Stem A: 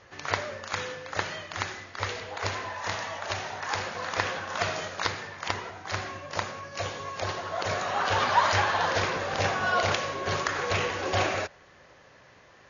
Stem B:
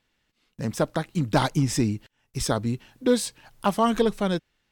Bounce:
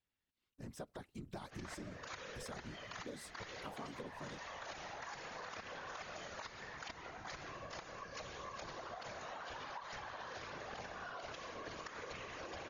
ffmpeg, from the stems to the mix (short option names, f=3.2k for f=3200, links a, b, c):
-filter_complex "[0:a]bandreject=f=50:t=h:w=6,bandreject=f=100:t=h:w=6,acompressor=threshold=-34dB:ratio=6,adelay=1400,volume=-1dB[a];[1:a]volume=-13dB[b];[a][b]amix=inputs=2:normalize=0,afftfilt=real='hypot(re,im)*cos(2*PI*random(0))':imag='hypot(re,im)*sin(2*PI*random(1))':win_size=512:overlap=0.75,acompressor=threshold=-44dB:ratio=6"